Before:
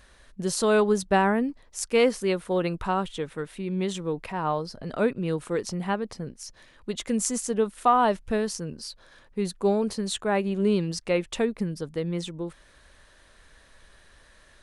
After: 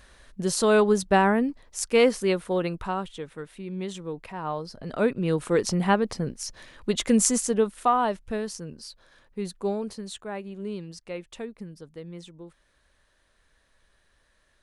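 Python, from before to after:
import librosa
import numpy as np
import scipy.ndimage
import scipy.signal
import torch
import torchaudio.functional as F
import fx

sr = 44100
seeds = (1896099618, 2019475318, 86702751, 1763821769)

y = fx.gain(x, sr, db=fx.line((2.31, 1.5), (3.16, -5.0), (4.41, -5.0), (5.66, 6.0), (7.21, 6.0), (8.12, -4.0), (9.59, -4.0), (10.44, -11.0)))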